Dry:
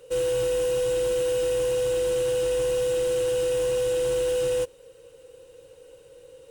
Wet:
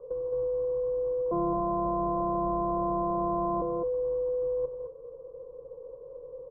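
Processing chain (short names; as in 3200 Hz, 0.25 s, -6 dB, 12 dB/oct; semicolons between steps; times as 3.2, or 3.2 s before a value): 1.31–3.62 sample sorter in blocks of 128 samples; steep low-pass 1200 Hz 72 dB/oct; bell 87 Hz -10.5 dB 0.69 oct; comb 1.9 ms, depth 56%; negative-ratio compressor -27 dBFS, ratio -1; echo 0.216 s -6 dB; gain -3 dB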